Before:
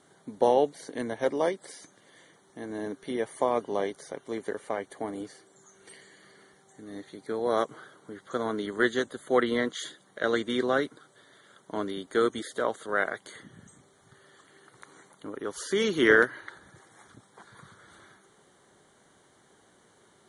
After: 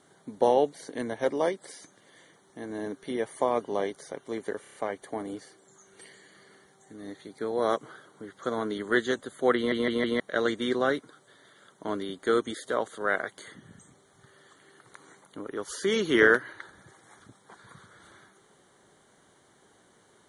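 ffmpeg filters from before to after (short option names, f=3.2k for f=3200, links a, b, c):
-filter_complex "[0:a]asplit=9[a][b][c][d][e][f][g][h][i];[a]atrim=end=4.652[j];[b]atrim=start=4.618:end=4.652[k];[c]atrim=start=4.618:end=4.652[l];[d]atrim=start=4.618:end=4.652[m];[e]atrim=start=4.618:end=9.602[n];[f]atrim=start=9.438:end=9.602[o];[g]atrim=start=9.438:end=9.602[p];[h]atrim=start=9.438:end=9.602[q];[i]atrim=start=10.078[r];[j][k]acrossfade=d=0.004:c1=hsin:c2=hsin[s];[s][l]acrossfade=d=0.004:c1=hsin:c2=hsin[t];[t][m]acrossfade=d=0.004:c1=hsin:c2=hsin[u];[u][n]acrossfade=d=0.004:c1=hsin:c2=hsin[v];[v][o]acrossfade=d=0.004:c1=hsin:c2=hsin[w];[w][p]acrossfade=d=0.004:c1=hsin:c2=hsin[x];[x][q]acrossfade=d=0.004:c1=hsin:c2=hsin[y];[y][r]acrossfade=d=0.004:c1=hsin:c2=hsin"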